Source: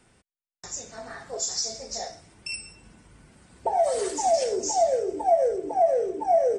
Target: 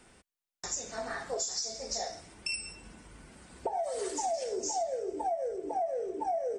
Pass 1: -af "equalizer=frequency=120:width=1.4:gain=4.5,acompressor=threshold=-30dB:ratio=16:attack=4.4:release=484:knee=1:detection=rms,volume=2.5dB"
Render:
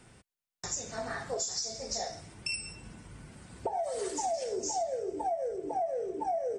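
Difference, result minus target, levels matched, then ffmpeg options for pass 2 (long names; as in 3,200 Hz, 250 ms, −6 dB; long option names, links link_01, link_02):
125 Hz band +7.0 dB
-af "equalizer=frequency=120:width=1.4:gain=-7,acompressor=threshold=-30dB:ratio=16:attack=4.4:release=484:knee=1:detection=rms,volume=2.5dB"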